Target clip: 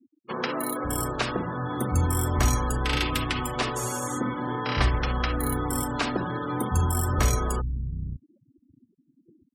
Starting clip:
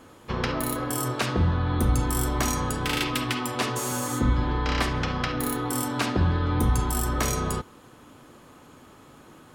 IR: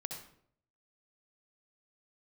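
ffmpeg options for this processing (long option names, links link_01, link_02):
-filter_complex "[0:a]asettb=1/sr,asplit=3[link_01][link_02][link_03];[link_01]atrim=end=2.884[link_04];[link_02]atrim=start=2.88:end=3.89,asetpts=PTS-STARTPTS,afade=type=in:duration=0.004:curve=qsin,afade=type=out:start_time=1.006:duration=0.004:curve=qsin,acrusher=bits=6:mix=0:aa=0.5[link_05];[link_03]atrim=start=3.886[link_06];[link_04][link_05]acrossfade=duration=0.004:curve1=hsin:curve2=qsin[link_07];[link_07][link_06]acrossfade=duration=0.004:curve1=qsin:curve2=hsin,afftfilt=real='re*gte(hypot(re,im),0.02)':imag='im*gte(hypot(re,im),0.02)':win_size=1024:overlap=0.75,acrossover=split=180[link_08][link_09];[link_08]adelay=550[link_10];[link_10][link_09]amix=inputs=2:normalize=0"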